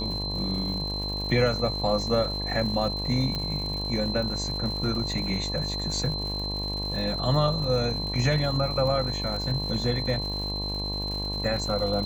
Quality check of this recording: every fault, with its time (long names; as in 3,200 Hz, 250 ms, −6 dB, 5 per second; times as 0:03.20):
mains buzz 50 Hz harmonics 22 −33 dBFS
surface crackle 190 per second −35 dBFS
whistle 4,100 Hz −31 dBFS
0:03.35: click −17 dBFS